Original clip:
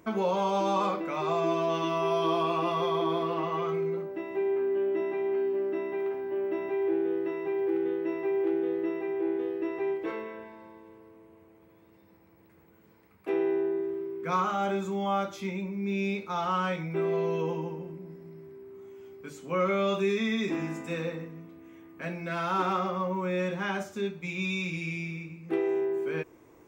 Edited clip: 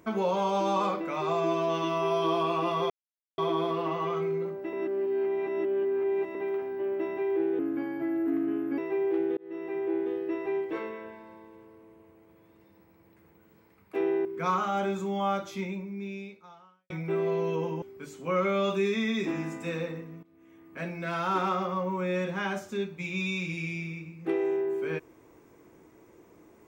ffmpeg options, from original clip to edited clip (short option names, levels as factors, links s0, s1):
-filter_complex "[0:a]asplit=11[s0][s1][s2][s3][s4][s5][s6][s7][s8][s9][s10];[s0]atrim=end=2.9,asetpts=PTS-STARTPTS,afade=t=out:st=2.896:d=0.004:c=hsin,apad=pad_dur=0.48[s11];[s1]atrim=start=2.9:end=4.252,asetpts=PTS-STARTPTS,afade=t=in:d=0.004:c=hsin[s12];[s2]atrim=start=4.248:end=5.872,asetpts=PTS-STARTPTS,areverse[s13];[s3]atrim=start=5.868:end=7.114[s14];[s4]atrim=start=7.11:end=8.11,asetpts=PTS-STARTPTS,asetrate=37044,aresample=44100[s15];[s5]atrim=start=8.106:end=8.7,asetpts=PTS-STARTPTS,afade=t=out:st=0.59:d=0.004:c=hsin[s16];[s6]atrim=start=8.7:end=13.582,asetpts=PTS-STARTPTS,afade=t=in:d=0.4[s17];[s7]atrim=start=14.108:end=16.76,asetpts=PTS-STARTPTS,afade=t=out:st=1.402:d=1.25:c=qua[s18];[s8]atrim=start=16.76:end=17.682,asetpts=PTS-STARTPTS,afade=t=in:d=0.004:c=hsin[s19];[s9]atrim=start=19.058:end=21.47,asetpts=PTS-STARTPTS,afade=t=out:st=2.408:d=0.004:c=hsin:silence=0.141254[s20];[s10]atrim=start=21.47,asetpts=PTS-STARTPTS,afade=t=in:d=0.59:silence=0.141254[s21];[s11][s12]concat=n=2:v=0:a=1[s22];[s22][s13]acrossfade=d=0.004:c1=hsin:c2=hsin[s23];[s23][s14]acrossfade=d=0.004:c1=hsin:c2=hsin[s24];[s24][s15]acrossfade=d=0.004:c1=hsin:c2=hsin[s25];[s16][s17]concat=n=2:v=0:a=1[s26];[s25][s26]acrossfade=d=0.004:c1=hsin:c2=hsin[s27];[s18][s19]concat=n=2:v=0:a=1[s28];[s27][s28]acrossfade=d=0.004:c1=hsin:c2=hsin[s29];[s20][s21]concat=n=2:v=0:a=1[s30];[s29][s30]acrossfade=d=0.004:c1=hsin:c2=hsin"